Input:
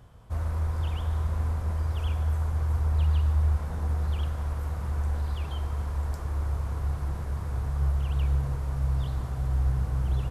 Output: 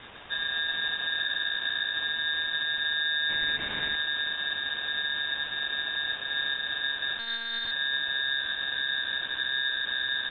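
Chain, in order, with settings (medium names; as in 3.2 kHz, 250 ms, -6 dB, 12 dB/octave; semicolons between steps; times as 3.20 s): 1.17–1.94 s: octave divider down 2 oct, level -5 dB; word length cut 6-bit, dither triangular; peak limiter -20.5 dBFS, peak gain reduction 6 dB; 3.29–3.96 s: peaking EQ 1.8 kHz +11 dB 1.3 oct; frequency inversion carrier 2.7 kHz; ring modulator 990 Hz; 7.19–7.71 s: monotone LPC vocoder at 8 kHz 230 Hz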